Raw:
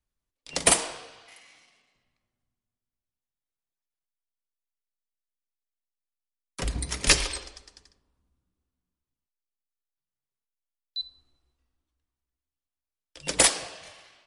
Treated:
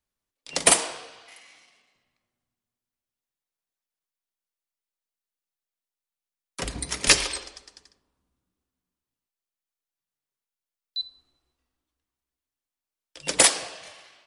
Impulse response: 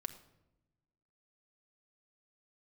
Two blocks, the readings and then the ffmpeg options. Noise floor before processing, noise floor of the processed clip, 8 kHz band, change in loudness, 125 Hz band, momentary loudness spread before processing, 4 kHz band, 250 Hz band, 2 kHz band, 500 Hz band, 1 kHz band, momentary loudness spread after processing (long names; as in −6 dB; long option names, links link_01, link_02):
below −85 dBFS, below −85 dBFS, +2.5 dB, +2.5 dB, −4.5 dB, 16 LU, +2.5 dB, +0.5 dB, +2.5 dB, +2.0 dB, +2.5 dB, 17 LU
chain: -af "lowshelf=frequency=110:gain=-12,volume=2.5dB"